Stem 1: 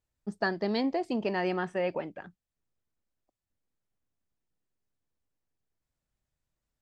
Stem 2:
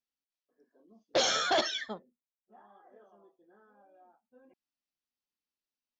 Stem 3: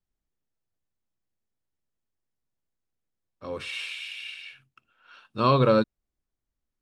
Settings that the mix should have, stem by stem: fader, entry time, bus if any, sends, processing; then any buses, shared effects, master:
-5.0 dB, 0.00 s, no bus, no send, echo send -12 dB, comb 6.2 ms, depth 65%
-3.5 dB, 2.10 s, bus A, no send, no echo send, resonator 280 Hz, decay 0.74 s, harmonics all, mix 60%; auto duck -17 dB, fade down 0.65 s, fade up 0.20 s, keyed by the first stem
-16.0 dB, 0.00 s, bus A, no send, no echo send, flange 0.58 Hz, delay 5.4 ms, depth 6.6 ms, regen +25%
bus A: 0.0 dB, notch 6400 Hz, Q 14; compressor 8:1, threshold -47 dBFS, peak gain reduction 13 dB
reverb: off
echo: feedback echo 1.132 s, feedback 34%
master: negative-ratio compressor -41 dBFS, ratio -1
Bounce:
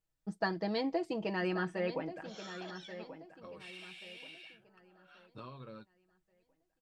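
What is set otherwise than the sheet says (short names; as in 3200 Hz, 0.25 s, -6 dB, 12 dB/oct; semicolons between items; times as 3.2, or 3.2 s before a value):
stem 2: entry 2.10 s -> 1.10 s; stem 3 -16.0 dB -> -6.0 dB; master: missing negative-ratio compressor -41 dBFS, ratio -1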